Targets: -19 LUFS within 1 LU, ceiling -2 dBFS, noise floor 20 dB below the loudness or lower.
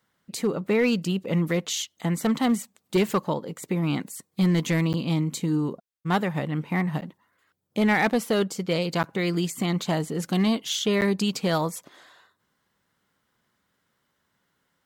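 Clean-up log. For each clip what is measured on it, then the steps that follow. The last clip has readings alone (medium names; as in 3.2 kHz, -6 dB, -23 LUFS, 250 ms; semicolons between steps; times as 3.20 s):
clipped samples 0.6%; clipping level -15.0 dBFS; dropouts 4; longest dropout 9.4 ms; loudness -25.5 LUFS; peak level -15.0 dBFS; loudness target -19.0 LUFS
-> clip repair -15 dBFS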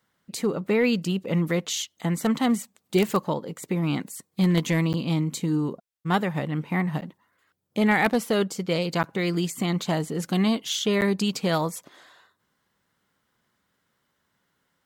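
clipped samples 0.0%; dropouts 4; longest dropout 9.4 ms
-> interpolate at 4.93/7.01/9.03/11.01 s, 9.4 ms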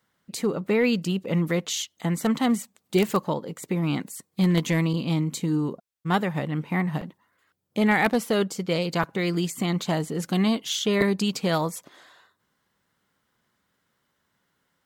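dropouts 0; loudness -25.5 LUFS; peak level -6.5 dBFS; loudness target -19.0 LUFS
-> trim +6.5 dB; peak limiter -2 dBFS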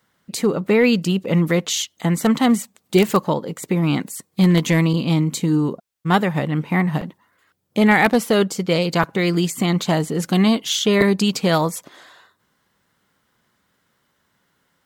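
loudness -19.0 LUFS; peak level -2.0 dBFS; noise floor -68 dBFS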